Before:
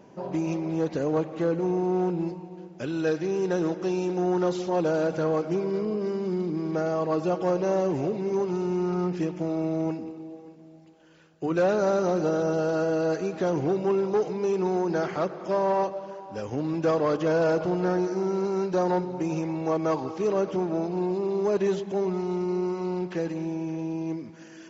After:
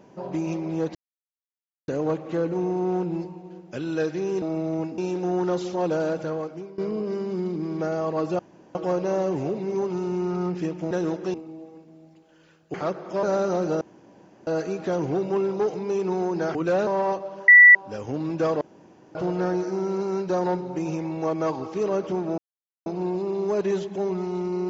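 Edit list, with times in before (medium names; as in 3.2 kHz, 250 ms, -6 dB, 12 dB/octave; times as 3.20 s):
0.95 s: insert silence 0.93 s
3.49–3.92 s: swap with 9.49–10.05 s
4.97–5.72 s: fade out, to -19 dB
7.33 s: insert room tone 0.36 s
11.45–11.77 s: swap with 15.09–15.58 s
12.35–13.01 s: room tone
16.19 s: add tone 1.96 kHz -7 dBFS 0.27 s
17.05–17.59 s: room tone
20.82 s: insert silence 0.48 s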